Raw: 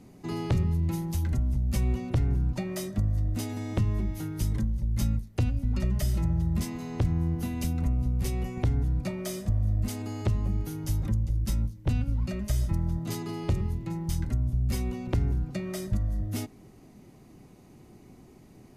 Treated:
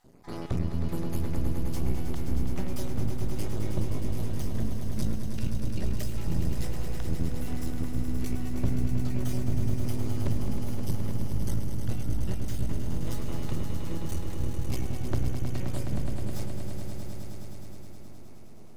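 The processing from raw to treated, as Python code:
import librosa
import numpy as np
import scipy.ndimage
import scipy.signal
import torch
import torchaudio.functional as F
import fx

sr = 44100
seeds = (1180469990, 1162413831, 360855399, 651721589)

y = fx.spec_dropout(x, sr, seeds[0], share_pct=31)
y = np.maximum(y, 0.0)
y = fx.echo_swell(y, sr, ms=105, loudest=5, wet_db=-8.5)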